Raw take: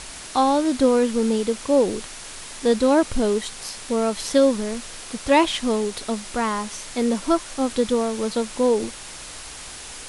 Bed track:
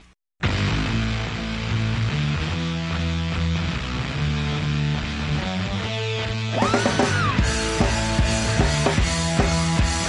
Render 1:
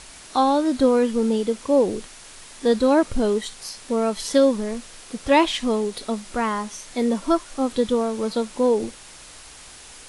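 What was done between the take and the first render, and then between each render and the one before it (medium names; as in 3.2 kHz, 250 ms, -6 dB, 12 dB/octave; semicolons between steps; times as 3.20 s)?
noise print and reduce 6 dB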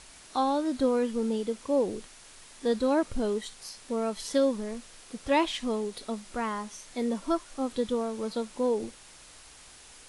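trim -8 dB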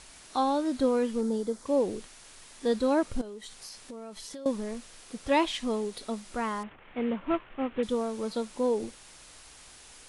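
1.21–1.66 s: peaking EQ 2.7 kHz -13.5 dB 0.64 oct; 3.21–4.46 s: compression 8:1, threshold -39 dBFS; 6.63–7.83 s: CVSD coder 16 kbps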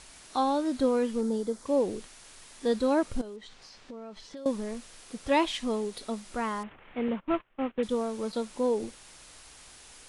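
3.36–4.37 s: distance through air 130 m; 7.08–8.33 s: gate -40 dBFS, range -19 dB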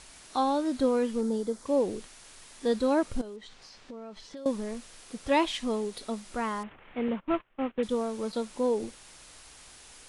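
no audible change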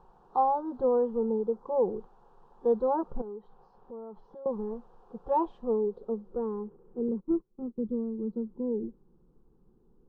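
low-pass sweep 750 Hz -> 290 Hz, 5.17–7.67 s; static phaser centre 420 Hz, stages 8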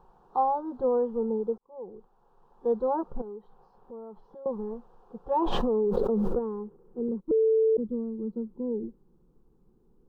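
1.58–2.84 s: fade in; 5.42–6.39 s: level flattener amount 100%; 7.31–7.77 s: bleep 443 Hz -19 dBFS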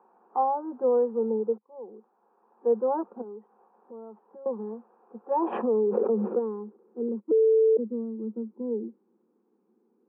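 Chebyshev band-pass 210–2500 Hz, order 5; dynamic bell 470 Hz, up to +4 dB, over -35 dBFS, Q 3.8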